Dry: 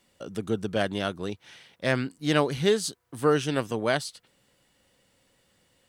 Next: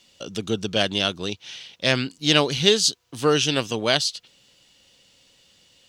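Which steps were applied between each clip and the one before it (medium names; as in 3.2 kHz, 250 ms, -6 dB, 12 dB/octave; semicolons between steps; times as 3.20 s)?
high-order bell 4.2 kHz +11.5 dB; trim +2.5 dB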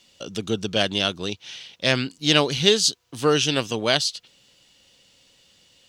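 no audible change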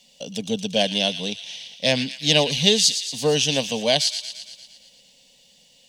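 static phaser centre 350 Hz, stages 6; feedback echo behind a high-pass 115 ms, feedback 63%, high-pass 2 kHz, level -9.5 dB; trim +3 dB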